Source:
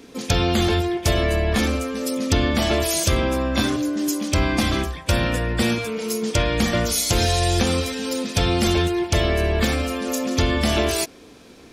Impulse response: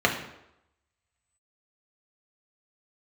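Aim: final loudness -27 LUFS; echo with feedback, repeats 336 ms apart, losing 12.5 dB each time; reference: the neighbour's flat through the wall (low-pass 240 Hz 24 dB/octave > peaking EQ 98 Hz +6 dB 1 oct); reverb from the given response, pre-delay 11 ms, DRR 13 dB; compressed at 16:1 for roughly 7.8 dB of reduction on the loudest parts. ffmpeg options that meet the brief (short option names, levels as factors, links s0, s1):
-filter_complex "[0:a]acompressor=threshold=0.0794:ratio=16,aecho=1:1:336|672|1008:0.237|0.0569|0.0137,asplit=2[s0][s1];[1:a]atrim=start_sample=2205,adelay=11[s2];[s1][s2]afir=irnorm=-1:irlink=0,volume=0.0335[s3];[s0][s3]amix=inputs=2:normalize=0,lowpass=f=240:w=0.5412,lowpass=f=240:w=1.3066,equalizer=f=98:t=o:w=1:g=6,volume=1.26"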